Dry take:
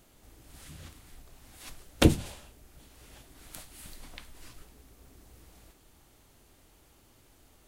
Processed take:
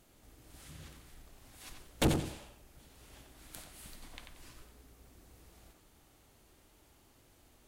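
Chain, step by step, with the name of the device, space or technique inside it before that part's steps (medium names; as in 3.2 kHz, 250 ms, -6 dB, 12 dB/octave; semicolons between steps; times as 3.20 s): rockabilly slapback (valve stage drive 22 dB, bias 0.7; tape echo 90 ms, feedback 34%, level -4 dB, low-pass 4 kHz)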